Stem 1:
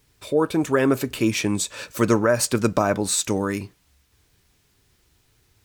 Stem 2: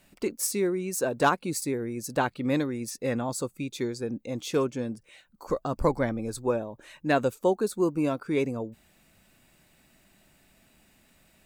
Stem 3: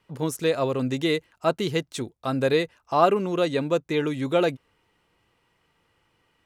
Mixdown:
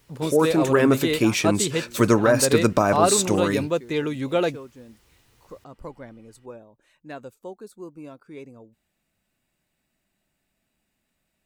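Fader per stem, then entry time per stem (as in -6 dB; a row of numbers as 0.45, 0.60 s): +1.0, -14.0, -0.5 dB; 0.00, 0.00, 0.00 s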